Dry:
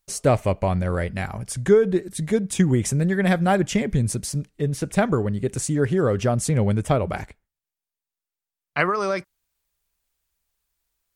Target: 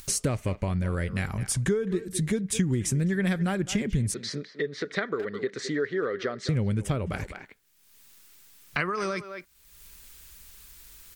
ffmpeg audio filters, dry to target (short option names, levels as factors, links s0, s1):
-filter_complex "[0:a]asettb=1/sr,asplit=3[s0][s1][s2];[s0]atrim=end=4.144[s3];[s1]atrim=start=4.14:end=6.49,asetpts=PTS-STARTPTS,afade=t=in:d=0.004:c=qsin,afade=t=out:st=2.346:d=0.004:c=qsin,highpass=420,equalizer=f=430:t=q:w=4:g=6,equalizer=f=890:t=q:w=4:g=-5,equalizer=f=1300:t=q:w=4:g=3,equalizer=f=1900:t=q:w=4:g=10,equalizer=f=2700:t=q:w=4:g=-10,equalizer=f=4000:t=q:w=4:g=6,lowpass=f=4400:w=0.5412,lowpass=f=4400:w=1.3066[s4];[s2]atrim=start=6.486[s5];[s3][s4]acrossfade=d=0.004:c1=hsin:c2=qsin[s6];[s6][s5]acrossfade=d=0.004:c1=qsin:c2=hsin,asplit=2[s7][s8];[s8]adelay=210,highpass=300,lowpass=3400,asoftclip=type=hard:threshold=0.211,volume=0.178[s9];[s7][s9]amix=inputs=2:normalize=0,acompressor=threshold=0.0158:ratio=3,equalizer=f=720:t=o:w=1.1:g=-9.5,acompressor=mode=upward:threshold=0.00794:ratio=2.5,volume=2.82"